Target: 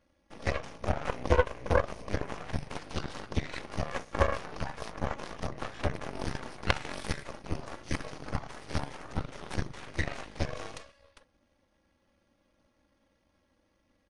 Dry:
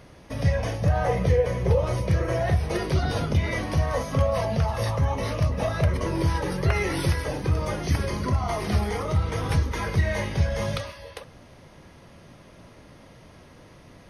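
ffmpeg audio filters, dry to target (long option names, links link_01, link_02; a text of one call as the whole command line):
ffmpeg -i in.wav -af "aecho=1:1:3.6:0.8,aeval=exprs='0.398*(cos(1*acos(clip(val(0)/0.398,-1,1)))-cos(1*PI/2))+0.112*(cos(2*acos(clip(val(0)/0.398,-1,1)))-cos(2*PI/2))+0.141*(cos(3*acos(clip(val(0)/0.398,-1,1)))-cos(3*PI/2))+0.0708*(cos(4*acos(clip(val(0)/0.398,-1,1)))-cos(4*PI/2))':channel_layout=same,aresample=22050,aresample=44100" out.wav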